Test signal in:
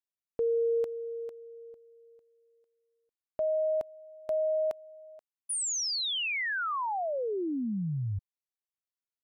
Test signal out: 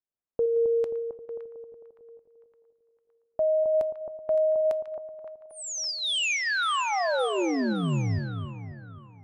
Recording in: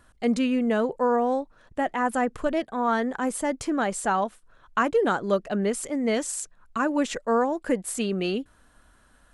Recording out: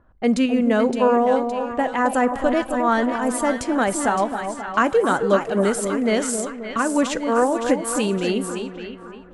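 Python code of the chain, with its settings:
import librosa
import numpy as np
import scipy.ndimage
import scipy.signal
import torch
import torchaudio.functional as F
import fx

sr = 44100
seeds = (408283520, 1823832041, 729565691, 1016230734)

p1 = fx.volume_shaper(x, sr, bpm=132, per_beat=1, depth_db=-13, release_ms=104.0, shape='slow start')
p2 = x + F.gain(torch.from_numpy(p1), -2.5).numpy()
p3 = fx.echo_split(p2, sr, split_hz=1100.0, low_ms=266, high_ms=565, feedback_pct=52, wet_db=-7.0)
p4 = fx.rev_double_slope(p3, sr, seeds[0], early_s=0.31, late_s=4.0, knee_db=-18, drr_db=16.5)
y = fx.env_lowpass(p4, sr, base_hz=1000.0, full_db=-19.5)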